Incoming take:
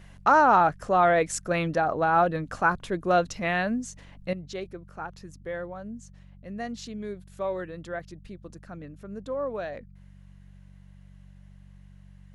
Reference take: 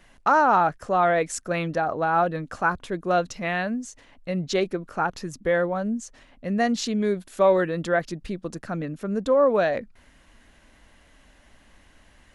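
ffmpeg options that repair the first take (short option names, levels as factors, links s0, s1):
-af "bandreject=f=47.4:t=h:w=4,bandreject=f=94.8:t=h:w=4,bandreject=f=142.2:t=h:w=4,bandreject=f=189.6:t=h:w=4,asetnsamples=n=441:p=0,asendcmd='4.33 volume volume 12dB',volume=1"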